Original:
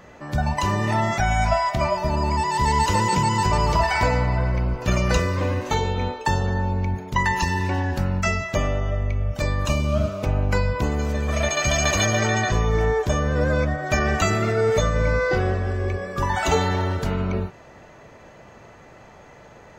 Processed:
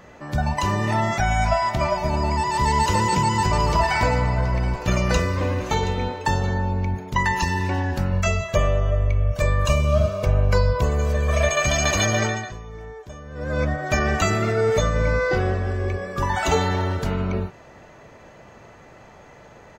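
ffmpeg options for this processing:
-filter_complex "[0:a]asplit=3[a][b][c];[a]afade=t=out:st=1.61:d=0.02[d];[b]aecho=1:1:725:0.178,afade=t=in:st=1.61:d=0.02,afade=t=out:st=6.57:d=0.02[e];[c]afade=t=in:st=6.57:d=0.02[f];[d][e][f]amix=inputs=3:normalize=0,asettb=1/sr,asplit=3[g][h][i];[g]atrim=end=8.124[j];[h]atrim=start=8.12:end=11.66,asetpts=PTS-STARTPTS,afade=t=in:d=0.004:c=qsin,afade=t=out:st=3.536:d=0.004:c=qsin,aecho=1:1:1.8:0.65,atrim=end_sample=156114[k];[i]atrim=start=11.656[l];[j][k]acrossfade=d=0.004:c1=hsin:c2=qsin[m];[m][l]acrossfade=d=0.004:c1=qsin:c2=hsin,asplit=3[n][o][p];[n]atrim=end=12.63,asetpts=PTS-STARTPTS,afade=t=out:st=12.23:d=0.4:c=qua:silence=0.141254[q];[o]atrim=start=12.63:end=13.23,asetpts=PTS-STARTPTS,volume=-17dB[r];[p]atrim=start=13.23,asetpts=PTS-STARTPTS,afade=t=in:d=0.4:c=qua:silence=0.141254[s];[q][r][s]concat=n=3:v=0:a=1"

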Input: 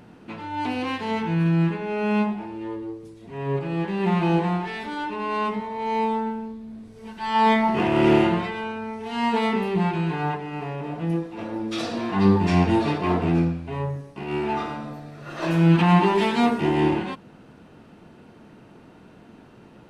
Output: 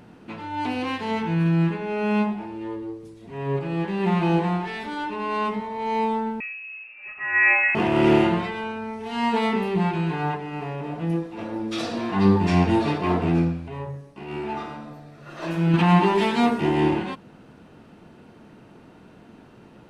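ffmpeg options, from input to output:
-filter_complex "[0:a]asettb=1/sr,asplit=3[a][b][c];[a]atrim=end=6.404[d];[b]atrim=start=6.4:end=7.75,asetpts=PTS-STARTPTS,afade=t=in:d=0.004:c=qsin,afade=t=out:st=1.346:d=0.004:c=qsin,lowpass=f=2.4k:t=q:w=0.5098,lowpass=f=2.4k:t=q:w=0.6013,lowpass=f=2.4k:t=q:w=0.9,lowpass=f=2.4k:t=q:w=2.563,afreqshift=-2800[e];[c]atrim=start=7.746[f];[d][e]acrossfade=d=0.004:c1=hsin:c2=qsin[g];[g][f]acrossfade=d=0.004:c1=qsin:c2=hsin,asettb=1/sr,asplit=3[h][i][j];[h]atrim=end=13.684[k];[i]atrim=start=13.68:end=15.74,asetpts=PTS-STARTPTS,afade=t=in:d=0.004:c=qsin,afade=t=out:st=2.056:d=0.004:c=qsin,flanger=delay=1.3:depth=4.4:regen=-77:speed=1.5:shape=triangular[l];[j]atrim=start=15.736[m];[k][l]acrossfade=d=0.004:c1=hsin:c2=qsin[n];[n][m]acrossfade=d=0.004:c1=qsin:c2=hsin"

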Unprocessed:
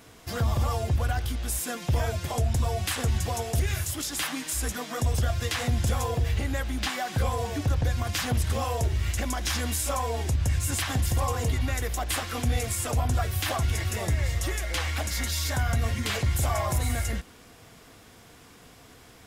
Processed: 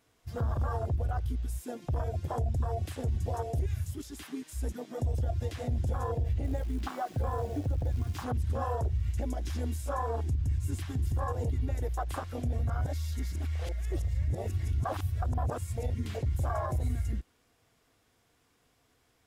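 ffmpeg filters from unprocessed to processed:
-filter_complex "[0:a]asettb=1/sr,asplit=3[a][b][c];[a]atrim=end=6.444[d];[b]atrim=start=6.44:end=8.24,asetpts=PTS-STARTPTS,afade=t=in:d=0.004:c=qsin,afade=t=out:st=1.796:d=0.004:c=qsin,acrusher=bits=7:dc=4:mix=0:aa=0.000001[e];[c]atrim=start=8.236[f];[d][e]acrossfade=d=0.004:c1=hsin:c2=qsin[g];[g][f]acrossfade=d=0.004:c1=qsin:c2=hsin,asplit=3[h][i][j];[h]atrim=end=12.532[k];[i]atrim=start=12.528:end=15.902,asetpts=PTS-STARTPTS,areverse[l];[j]atrim=start=15.898[m];[k][l]acrossfade=d=0.004:c1=hsin:c2=hsin[n];[n][m]acrossfade=d=0.004:c1=hsin:c2=hsin,afwtdn=0.0398,alimiter=limit=-21dB:level=0:latency=1:release=83,equalizer=f=190:w=3.2:g=-5,volume=-1.5dB"

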